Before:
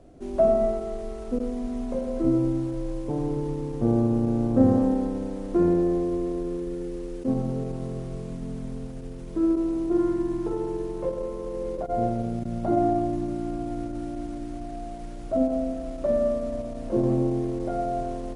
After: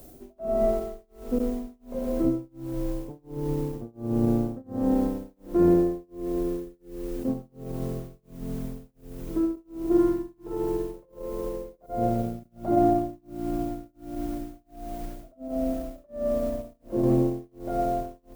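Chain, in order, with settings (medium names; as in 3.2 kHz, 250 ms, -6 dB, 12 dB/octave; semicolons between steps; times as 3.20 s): reverse echo 89 ms -18 dB; added noise violet -54 dBFS; tremolo 1.4 Hz, depth 99%; trim +2 dB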